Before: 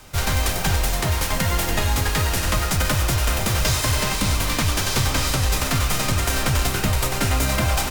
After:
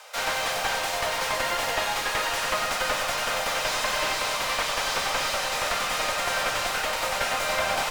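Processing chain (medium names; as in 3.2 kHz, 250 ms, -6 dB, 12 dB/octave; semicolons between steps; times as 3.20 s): steep high-pass 470 Hz 72 dB/octave; treble shelf 8.9 kHz -10.5 dB; one-sided clip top -30.5 dBFS; on a send at -9 dB: reverberation RT60 1.8 s, pre-delay 22 ms; on the sum: slew-rate limiter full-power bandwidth 150 Hz; trim +2.5 dB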